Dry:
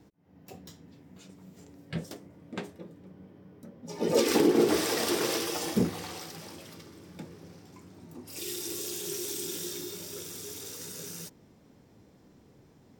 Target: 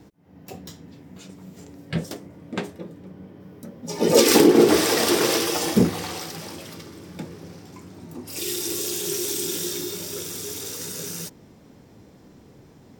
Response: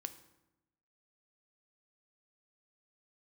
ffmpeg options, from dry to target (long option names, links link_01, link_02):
-filter_complex "[0:a]asettb=1/sr,asplit=3[link_01][link_02][link_03];[link_01]atrim=end=3.404[link_04];[link_02]atrim=start=3.4:end=4.44,asetpts=PTS-STARTPTS,afade=type=in:duration=0.004:curve=qsin,afade=type=out:start_time=1.036:duration=0.004:curve=qsin,highshelf=frequency=4200:gain=6[link_05];[link_03]atrim=start=4.436[link_06];[link_04][link_05]acrossfade=duration=0.004:curve1=hsin:curve2=qsin[link_07];[link_07][link_06]acrossfade=duration=0.004:curve1=qsin:curve2=hsin,volume=8.5dB"